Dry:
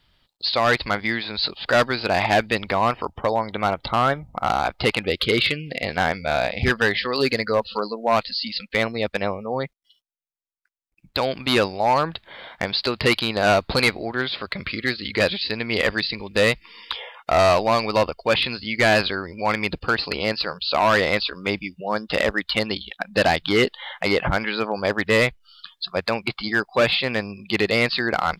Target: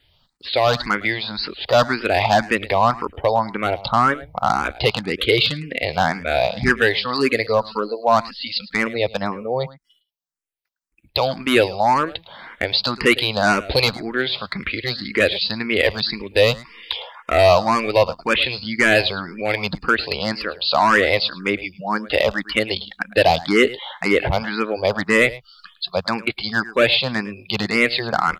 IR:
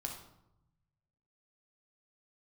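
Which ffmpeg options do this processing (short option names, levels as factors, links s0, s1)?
-filter_complex "[0:a]aecho=1:1:108:0.119,asplit=2[s0][s1];[s1]afreqshift=1.9[s2];[s0][s2]amix=inputs=2:normalize=1,volume=1.78"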